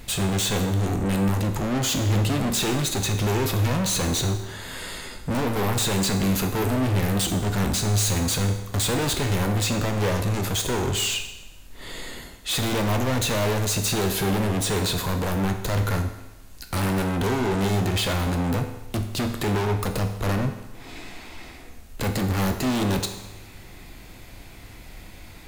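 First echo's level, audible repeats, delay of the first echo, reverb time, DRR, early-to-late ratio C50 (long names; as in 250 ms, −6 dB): no echo audible, no echo audible, no echo audible, 1.0 s, 5.0 dB, 8.0 dB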